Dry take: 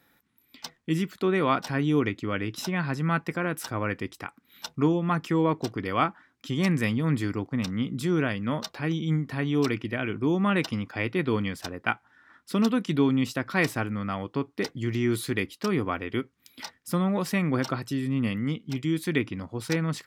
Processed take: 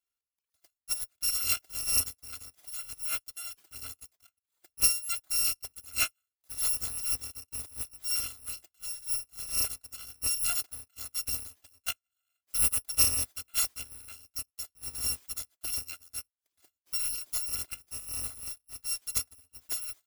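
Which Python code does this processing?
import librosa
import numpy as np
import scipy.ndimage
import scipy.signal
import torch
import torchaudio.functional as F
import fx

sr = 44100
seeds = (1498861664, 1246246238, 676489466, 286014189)

y = fx.bit_reversed(x, sr, seeds[0], block=256)
y = fx.upward_expand(y, sr, threshold_db=-36.0, expansion=2.5)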